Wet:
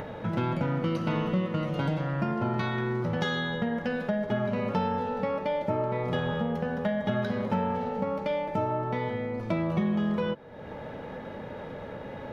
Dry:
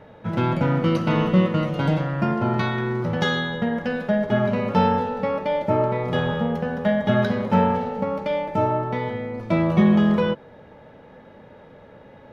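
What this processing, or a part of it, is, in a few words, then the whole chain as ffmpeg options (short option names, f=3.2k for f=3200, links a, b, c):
upward and downward compression: -af "acompressor=mode=upward:threshold=-25dB:ratio=2.5,acompressor=threshold=-22dB:ratio=4,volume=-3dB"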